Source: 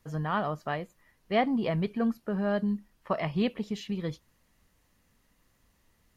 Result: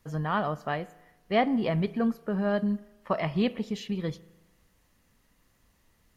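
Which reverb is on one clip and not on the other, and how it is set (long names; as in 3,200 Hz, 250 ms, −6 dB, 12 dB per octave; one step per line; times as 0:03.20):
spring reverb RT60 1.1 s, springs 37 ms, chirp 65 ms, DRR 18.5 dB
level +1.5 dB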